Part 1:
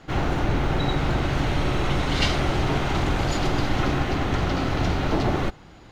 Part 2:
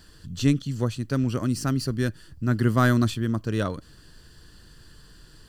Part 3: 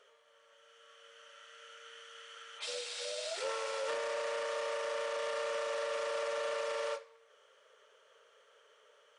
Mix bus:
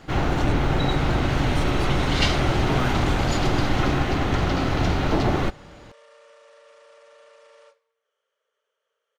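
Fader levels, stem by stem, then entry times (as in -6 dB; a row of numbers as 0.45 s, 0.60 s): +1.5 dB, -9.5 dB, -15.5 dB; 0.00 s, 0.00 s, 0.75 s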